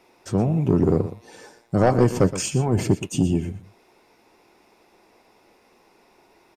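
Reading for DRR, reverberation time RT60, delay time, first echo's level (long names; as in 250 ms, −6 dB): no reverb audible, no reverb audible, 120 ms, −13.5 dB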